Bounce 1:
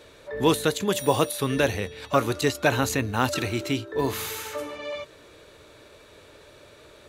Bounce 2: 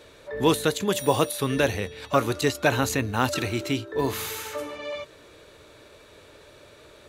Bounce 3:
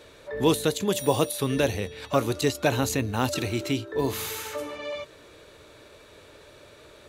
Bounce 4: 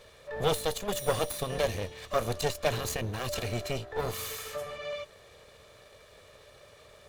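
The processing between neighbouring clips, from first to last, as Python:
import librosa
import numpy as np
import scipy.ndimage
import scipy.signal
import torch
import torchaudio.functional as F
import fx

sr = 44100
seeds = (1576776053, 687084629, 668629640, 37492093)

y1 = x
y2 = fx.dynamic_eq(y1, sr, hz=1500.0, q=0.99, threshold_db=-37.0, ratio=4.0, max_db=-6)
y3 = fx.lower_of_two(y2, sr, delay_ms=1.7)
y3 = y3 * librosa.db_to_amplitude(-3.0)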